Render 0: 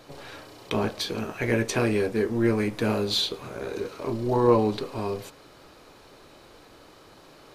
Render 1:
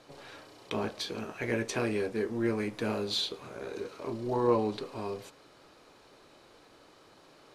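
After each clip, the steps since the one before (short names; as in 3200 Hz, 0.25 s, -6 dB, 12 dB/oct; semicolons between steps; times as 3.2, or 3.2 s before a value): LPF 11000 Hz 12 dB/oct; low shelf 100 Hz -8.5 dB; gain -6 dB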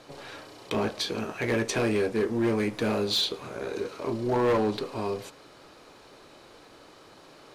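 hard clip -26 dBFS, distortion -11 dB; gain +6 dB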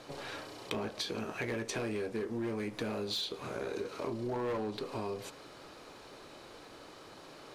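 compressor, threshold -34 dBFS, peak gain reduction 11.5 dB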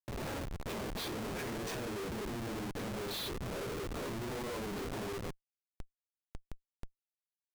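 phase scrambler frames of 0.1 s; Schmitt trigger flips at -40 dBFS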